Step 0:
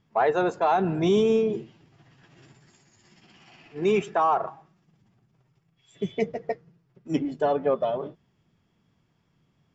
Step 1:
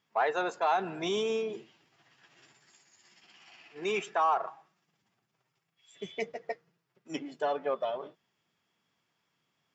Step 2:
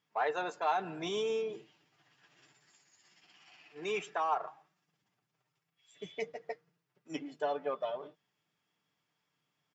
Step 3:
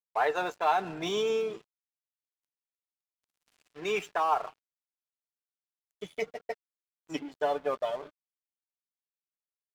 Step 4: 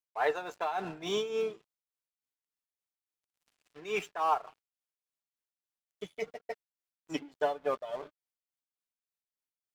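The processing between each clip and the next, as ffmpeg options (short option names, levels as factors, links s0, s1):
-af "highpass=f=1200:p=1"
-af "aecho=1:1:6.7:0.34,volume=0.596"
-af "aeval=exprs='sgn(val(0))*max(abs(val(0))-0.00211,0)':c=same,volume=1.88"
-af "tremolo=f=3.5:d=0.73"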